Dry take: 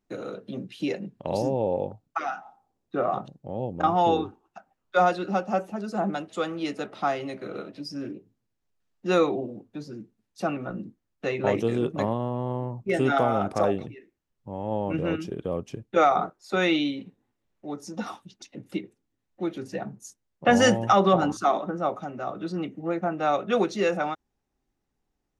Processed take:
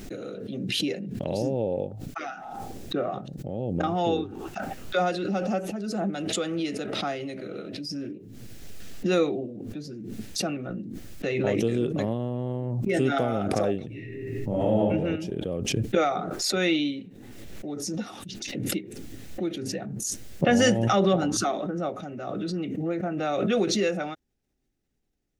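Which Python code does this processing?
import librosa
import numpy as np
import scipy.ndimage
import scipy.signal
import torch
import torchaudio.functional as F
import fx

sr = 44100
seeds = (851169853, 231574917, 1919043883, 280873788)

y = fx.reverb_throw(x, sr, start_s=13.87, length_s=0.93, rt60_s=0.9, drr_db=-8.0)
y = fx.peak_eq(y, sr, hz=990.0, db=-12.5, octaves=0.83)
y = fx.pre_swell(y, sr, db_per_s=27.0)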